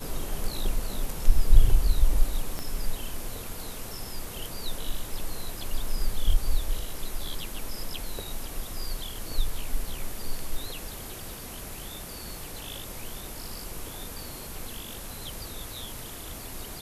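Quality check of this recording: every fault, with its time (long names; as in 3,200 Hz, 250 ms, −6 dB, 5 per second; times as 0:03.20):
0:02.59: click −18 dBFS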